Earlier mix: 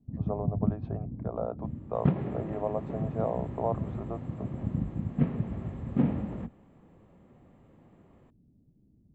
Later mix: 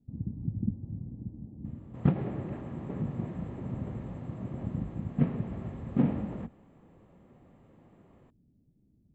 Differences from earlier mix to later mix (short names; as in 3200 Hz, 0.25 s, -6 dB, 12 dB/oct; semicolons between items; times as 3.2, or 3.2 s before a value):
speech: muted; first sound -3.5 dB